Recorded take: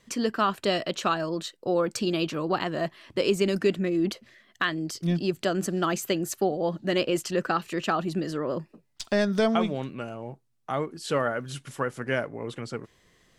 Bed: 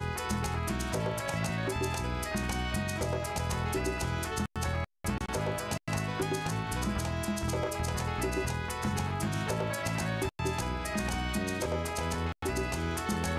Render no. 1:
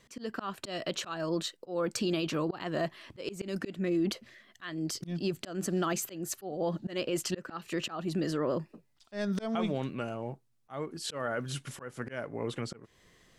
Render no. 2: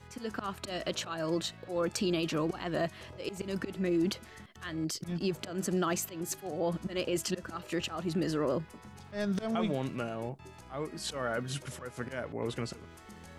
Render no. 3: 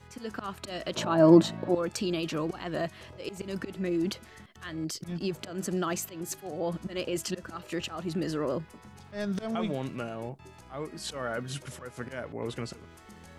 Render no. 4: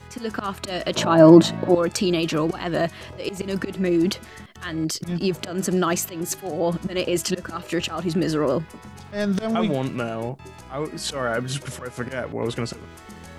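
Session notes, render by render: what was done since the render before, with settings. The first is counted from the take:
volume swells 292 ms; brickwall limiter −22 dBFS, peak gain reduction 8 dB
mix in bed −19 dB
0:00.96–0:01.75: hollow resonant body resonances 210/300/610/870 Hz, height 15 dB, ringing for 20 ms
level +9 dB; brickwall limiter −1 dBFS, peak gain reduction 2.5 dB

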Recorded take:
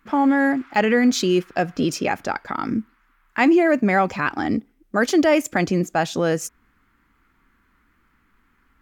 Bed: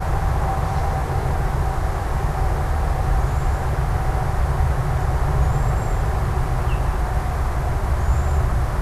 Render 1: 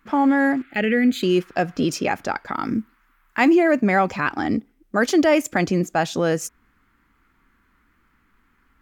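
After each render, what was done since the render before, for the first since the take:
0:00.62–0:01.23: phaser with its sweep stopped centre 2,400 Hz, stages 4
0:02.53–0:03.55: high-shelf EQ 10,000 Hz +7.5 dB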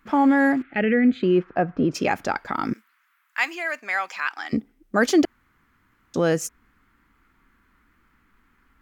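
0:00.62–0:01.94: low-pass filter 2,600 Hz → 1,300 Hz
0:02.73–0:04.53: high-pass filter 1,400 Hz
0:05.25–0:06.14: fill with room tone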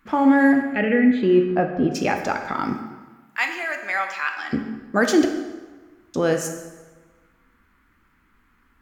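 dense smooth reverb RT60 1.3 s, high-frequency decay 0.75×, DRR 4.5 dB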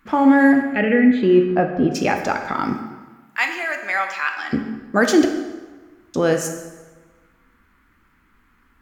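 level +2.5 dB

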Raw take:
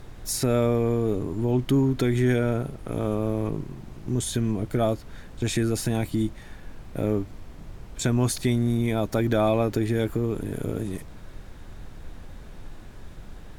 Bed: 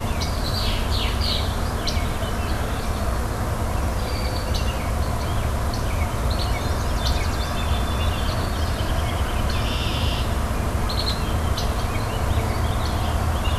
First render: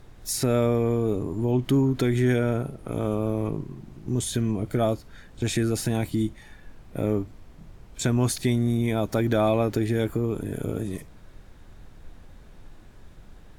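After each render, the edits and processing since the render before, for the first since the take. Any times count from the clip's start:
noise reduction from a noise print 6 dB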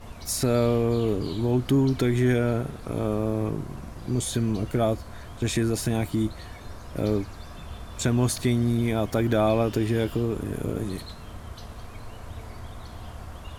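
mix in bed −18 dB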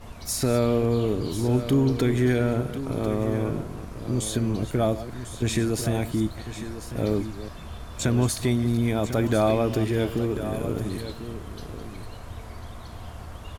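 delay that plays each chunk backwards 214 ms, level −13.5 dB
on a send: single-tap delay 1,046 ms −11.5 dB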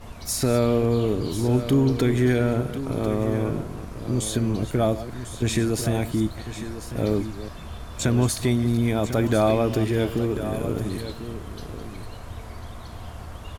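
level +1.5 dB

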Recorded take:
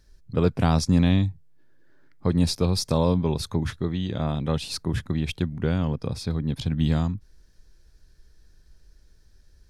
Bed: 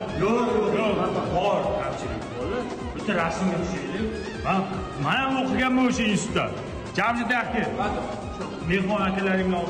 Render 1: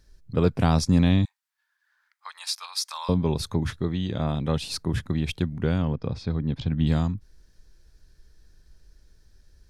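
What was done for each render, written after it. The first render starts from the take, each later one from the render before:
0:01.25–0:03.09: Butterworth high-pass 970 Hz
0:05.82–0:06.87: high-frequency loss of the air 150 metres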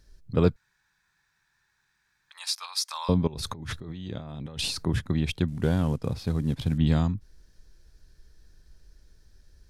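0:00.56–0:02.31: fill with room tone
0:03.27–0:04.85: compressor whose output falls as the input rises −36 dBFS
0:05.48–0:06.78: variable-slope delta modulation 64 kbit/s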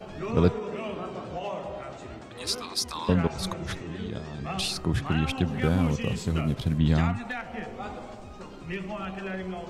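mix in bed −11 dB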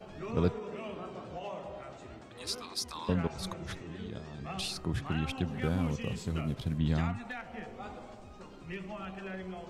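level −7 dB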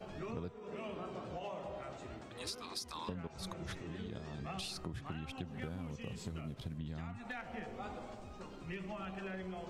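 downward compressor 10 to 1, threshold −39 dBFS, peak gain reduction 17.5 dB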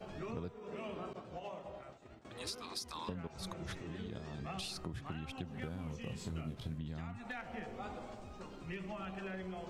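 0:01.13–0:02.25: downward expander −41 dBFS
0:05.79–0:06.79: double-tracking delay 25 ms −7 dB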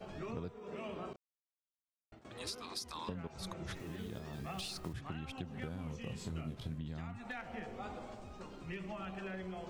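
0:01.16–0:02.12: silence
0:03.75–0:04.95: one scale factor per block 5 bits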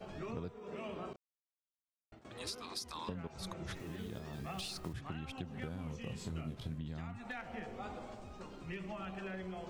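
no processing that can be heard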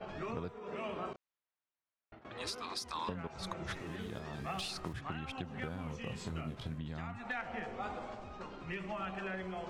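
low-pass that shuts in the quiet parts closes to 2,800 Hz, open at −38 dBFS
parametric band 1,300 Hz +6.5 dB 2.6 octaves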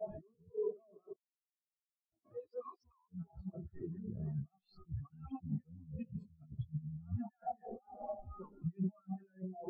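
compressor whose output falls as the input rises −44 dBFS, ratio −0.5
every bin expanded away from the loudest bin 4 to 1

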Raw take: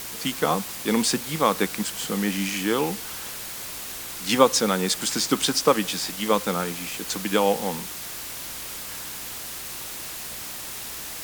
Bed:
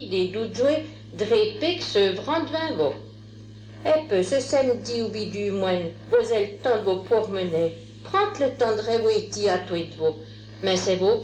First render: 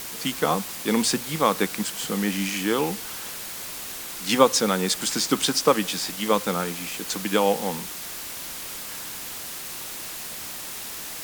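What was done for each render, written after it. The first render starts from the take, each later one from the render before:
hum removal 60 Hz, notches 2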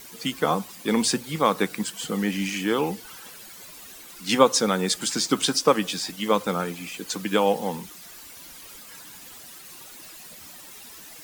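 broadband denoise 12 dB, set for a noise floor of −36 dBFS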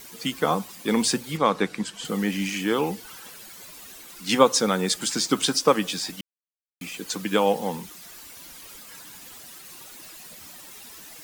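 0:01.37–0:02.05: high-frequency loss of the air 56 metres
0:06.21–0:06.81: silence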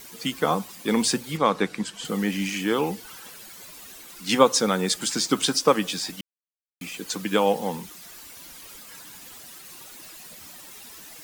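no processing that can be heard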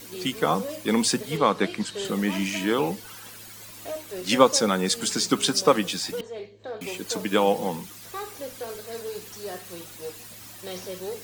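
mix in bed −14 dB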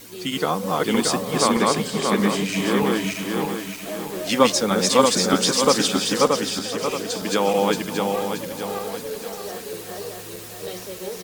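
feedback delay that plays each chunk backwards 314 ms, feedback 64%, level 0 dB
single-tap delay 516 ms −17 dB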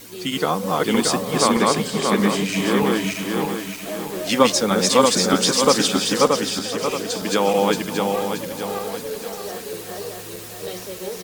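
level +1.5 dB
brickwall limiter −2 dBFS, peak gain reduction 1.5 dB

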